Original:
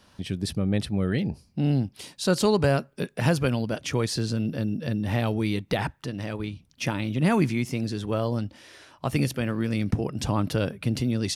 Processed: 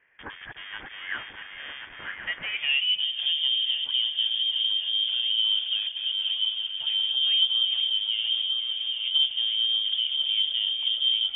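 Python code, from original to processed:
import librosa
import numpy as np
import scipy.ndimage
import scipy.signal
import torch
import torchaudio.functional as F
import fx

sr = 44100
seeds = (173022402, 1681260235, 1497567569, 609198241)

p1 = fx.reverse_delay_fb(x, sr, ms=538, feedback_pct=55, wet_db=-8)
p2 = fx.fuzz(p1, sr, gain_db=41.0, gate_db=-42.0)
p3 = p1 + (p2 * librosa.db_to_amplitude(-11.5))
p4 = fx.echo_stepped(p3, sr, ms=476, hz=1000.0, octaves=0.7, feedback_pct=70, wet_db=-6.0)
p5 = fx.filter_sweep_bandpass(p4, sr, from_hz=1600.0, to_hz=290.0, start_s=2.45, end_s=3.07, q=3.4)
p6 = fx.freq_invert(p5, sr, carrier_hz=3400)
y = p6 * librosa.db_to_amplitude(2.5)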